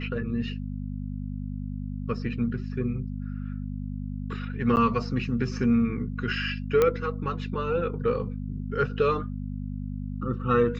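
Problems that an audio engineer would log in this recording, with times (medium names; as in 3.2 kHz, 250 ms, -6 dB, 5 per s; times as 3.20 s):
hum 50 Hz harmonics 5 -33 dBFS
4.76–4.77 s: dropout 9.5 ms
6.82 s: pop -10 dBFS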